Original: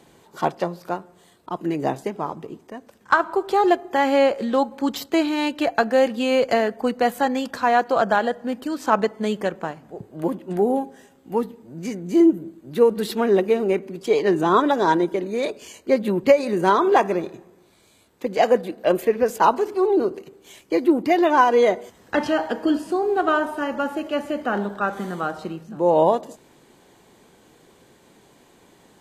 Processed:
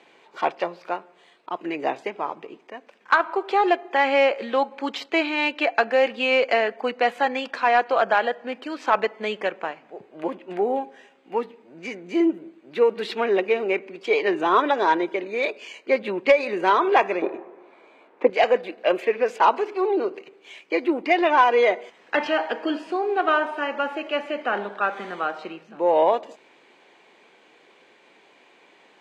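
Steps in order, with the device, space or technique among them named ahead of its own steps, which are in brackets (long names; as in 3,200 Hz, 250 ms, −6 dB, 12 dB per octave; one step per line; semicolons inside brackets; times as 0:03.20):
intercom (band-pass filter 410–4,100 Hz; parametric band 2,400 Hz +9.5 dB 0.6 octaves; soft clipping −5.5 dBFS, distortion −24 dB)
0:17.22–0:18.30: drawn EQ curve 150 Hz 0 dB, 270 Hz +11 dB, 1,000 Hz +11 dB, 4,300 Hz −9 dB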